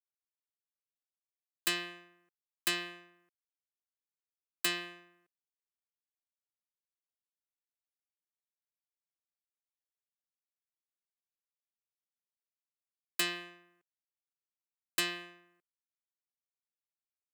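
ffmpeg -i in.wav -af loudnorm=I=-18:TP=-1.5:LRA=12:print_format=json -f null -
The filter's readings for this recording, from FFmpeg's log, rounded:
"input_i" : "-35.4",
"input_tp" : "-15.8",
"input_lra" : "3.0",
"input_thresh" : "-46.8",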